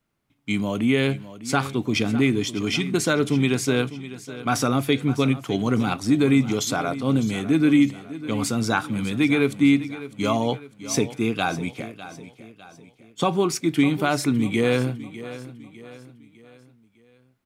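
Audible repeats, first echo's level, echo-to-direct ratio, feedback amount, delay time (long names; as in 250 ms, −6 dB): 3, −15.0 dB, −14.0 dB, 44%, 603 ms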